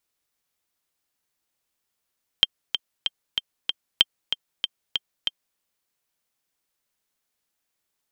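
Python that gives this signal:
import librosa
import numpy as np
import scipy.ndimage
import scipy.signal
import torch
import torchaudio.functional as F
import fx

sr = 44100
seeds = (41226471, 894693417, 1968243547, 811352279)

y = fx.click_track(sr, bpm=190, beats=5, bars=2, hz=3160.0, accent_db=8.5, level_db=-1.5)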